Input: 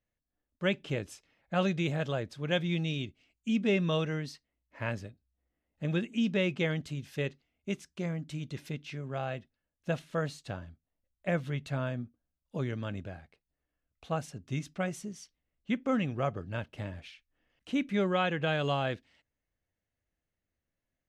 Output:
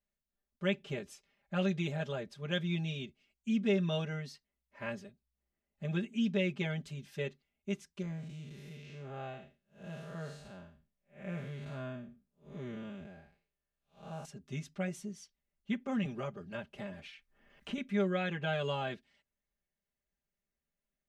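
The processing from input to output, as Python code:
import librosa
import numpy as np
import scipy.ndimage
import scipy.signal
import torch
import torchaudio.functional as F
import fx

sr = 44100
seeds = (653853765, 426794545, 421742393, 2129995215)

y = fx.spec_blur(x, sr, span_ms=189.0, at=(8.02, 14.25))
y = fx.band_squash(y, sr, depth_pct=70, at=(16.05, 17.78))
y = y + 0.99 * np.pad(y, (int(5.0 * sr / 1000.0), 0))[:len(y)]
y = y * 10.0 ** (-7.5 / 20.0)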